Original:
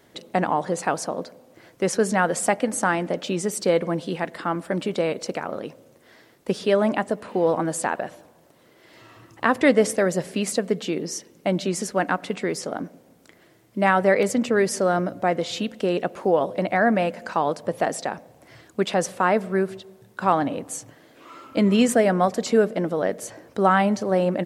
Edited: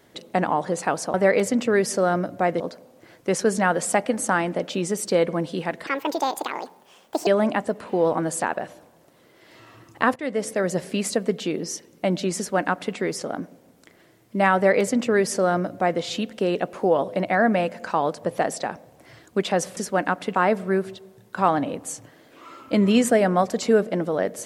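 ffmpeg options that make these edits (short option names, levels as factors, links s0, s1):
-filter_complex "[0:a]asplit=8[s0][s1][s2][s3][s4][s5][s6][s7];[s0]atrim=end=1.142[s8];[s1]atrim=start=13.968:end=15.432[s9];[s2]atrim=start=1.138:end=4.414[s10];[s3]atrim=start=4.41:end=6.69,asetpts=PTS-STARTPTS,asetrate=71883,aresample=44100[s11];[s4]atrim=start=6.686:end=9.58,asetpts=PTS-STARTPTS,afade=t=out:st=2.89:d=0.004:c=hsin:silence=0.112202[s12];[s5]atrim=start=9.58:end=19.192,asetpts=PTS-STARTPTS,afade=t=in:d=0.63:silence=0.112202[s13];[s6]atrim=start=11.788:end=12.372[s14];[s7]atrim=start=19.188[s15];[s8][s9]acrossfade=d=0.004:c1=hsin:c2=hsin[s16];[s16][s10]acrossfade=d=0.004:c1=hsin:c2=hsin[s17];[s17][s11]acrossfade=d=0.004:c1=hsin:c2=hsin[s18];[s12][s13]concat=n=2:v=0:a=1[s19];[s18][s19]acrossfade=d=0.004:c1=hsin:c2=hsin[s20];[s20][s14]acrossfade=d=0.004:c1=hsin:c2=hsin[s21];[s21][s15]acrossfade=d=0.004:c1=hsin:c2=hsin"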